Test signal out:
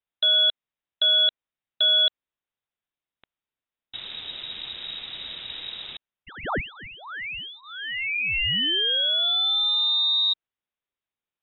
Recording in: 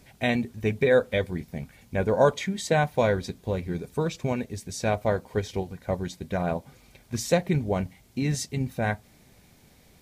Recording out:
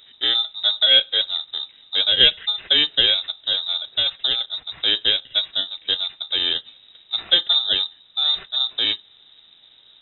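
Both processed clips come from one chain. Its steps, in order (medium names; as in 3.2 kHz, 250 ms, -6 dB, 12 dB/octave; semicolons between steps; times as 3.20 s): bit-reversed sample order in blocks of 16 samples; frequency inversion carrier 3.8 kHz; trim +5.5 dB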